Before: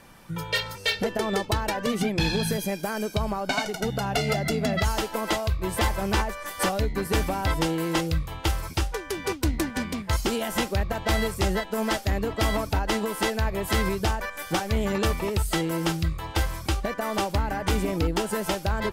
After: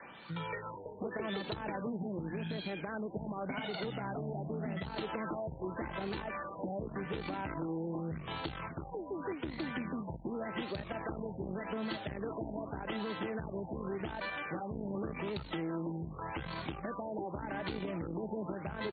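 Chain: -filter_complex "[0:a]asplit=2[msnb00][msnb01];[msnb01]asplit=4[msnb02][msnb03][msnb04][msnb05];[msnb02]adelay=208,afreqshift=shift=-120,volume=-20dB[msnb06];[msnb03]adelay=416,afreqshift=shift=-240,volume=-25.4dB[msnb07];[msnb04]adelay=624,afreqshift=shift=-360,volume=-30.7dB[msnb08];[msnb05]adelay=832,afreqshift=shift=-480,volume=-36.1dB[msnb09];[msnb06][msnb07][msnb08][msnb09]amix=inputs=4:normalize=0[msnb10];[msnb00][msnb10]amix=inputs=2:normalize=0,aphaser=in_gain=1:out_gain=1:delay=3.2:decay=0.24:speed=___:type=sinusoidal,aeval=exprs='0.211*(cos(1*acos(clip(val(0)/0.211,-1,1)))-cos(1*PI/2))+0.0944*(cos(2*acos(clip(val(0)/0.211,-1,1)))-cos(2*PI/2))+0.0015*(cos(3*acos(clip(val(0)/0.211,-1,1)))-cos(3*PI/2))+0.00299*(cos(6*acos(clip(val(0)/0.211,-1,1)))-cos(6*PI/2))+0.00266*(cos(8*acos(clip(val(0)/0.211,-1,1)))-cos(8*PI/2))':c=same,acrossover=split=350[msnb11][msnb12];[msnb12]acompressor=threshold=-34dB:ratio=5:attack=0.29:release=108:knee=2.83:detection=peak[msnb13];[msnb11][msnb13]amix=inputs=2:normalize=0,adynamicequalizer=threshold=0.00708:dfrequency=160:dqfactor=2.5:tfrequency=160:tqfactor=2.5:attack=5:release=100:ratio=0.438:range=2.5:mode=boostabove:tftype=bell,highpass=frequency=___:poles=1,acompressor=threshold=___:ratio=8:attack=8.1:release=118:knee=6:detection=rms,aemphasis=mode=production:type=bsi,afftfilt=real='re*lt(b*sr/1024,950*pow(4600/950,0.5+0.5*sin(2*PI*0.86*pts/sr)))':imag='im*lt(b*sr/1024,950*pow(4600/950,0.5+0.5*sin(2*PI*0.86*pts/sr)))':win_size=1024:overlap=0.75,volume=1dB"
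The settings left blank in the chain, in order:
0.6, 120, -30dB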